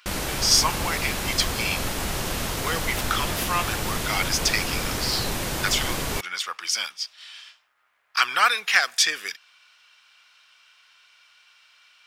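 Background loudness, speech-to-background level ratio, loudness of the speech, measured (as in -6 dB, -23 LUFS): -27.5 LUFS, 3.0 dB, -24.5 LUFS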